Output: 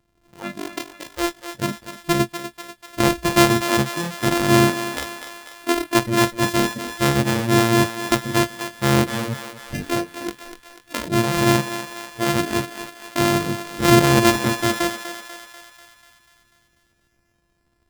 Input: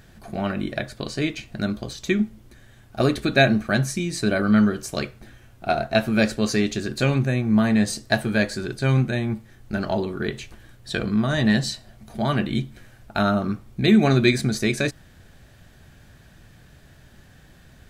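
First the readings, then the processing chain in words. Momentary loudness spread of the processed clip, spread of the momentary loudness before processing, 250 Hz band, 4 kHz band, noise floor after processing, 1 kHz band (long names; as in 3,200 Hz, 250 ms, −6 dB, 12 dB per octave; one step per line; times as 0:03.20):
17 LU, 12 LU, +0.5 dB, +4.5 dB, −66 dBFS, +7.5 dB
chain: samples sorted by size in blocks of 128 samples
noise reduction from a noise print of the clip's start 20 dB
feedback echo with a high-pass in the loop 245 ms, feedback 60%, high-pass 460 Hz, level −9 dB
level +2 dB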